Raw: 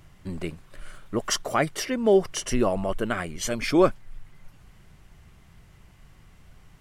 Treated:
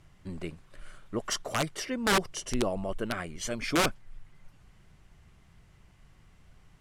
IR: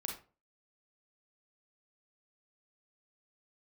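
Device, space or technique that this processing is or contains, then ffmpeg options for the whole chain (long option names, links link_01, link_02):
overflowing digital effects unit: -filter_complex "[0:a]asettb=1/sr,asplit=3[link_01][link_02][link_03];[link_01]atrim=end=2.114[link_04];[link_02]atrim=start=2.11:end=2.99,asetpts=PTS-STARTPTS,afade=type=in:duration=0.004:curve=qsin,afade=type=out:start_time=0.876:duration=0.004:curve=qsin,equalizer=frequency=1600:width=0.92:gain=-5[link_05];[link_03]atrim=start=2.986[link_06];[link_04][link_05]acrossfade=duration=0.004:curve1=hsin:curve2=qsin[link_07];[link_07][link_06]acrossfade=duration=0.004:curve1=qsin:curve2=hsin,aeval=exprs='(mod(4.73*val(0)+1,2)-1)/4.73':channel_layout=same,lowpass=11000,volume=-5.5dB"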